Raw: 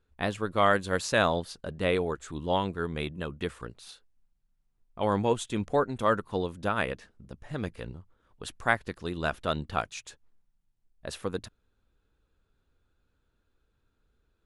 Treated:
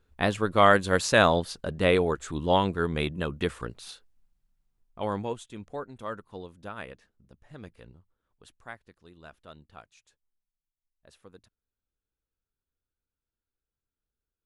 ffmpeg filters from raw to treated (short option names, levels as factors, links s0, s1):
-af "volume=1.68,afade=t=out:st=3.8:d=1.24:silence=0.421697,afade=t=out:st=5.04:d=0.42:silence=0.398107,afade=t=out:st=7.98:d=0.83:silence=0.398107"